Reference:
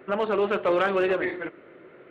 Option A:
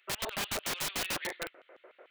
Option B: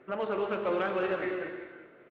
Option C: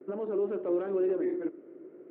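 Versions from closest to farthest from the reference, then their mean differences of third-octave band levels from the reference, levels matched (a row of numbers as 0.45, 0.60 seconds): B, C, A; 3.0, 7.0, 12.5 decibels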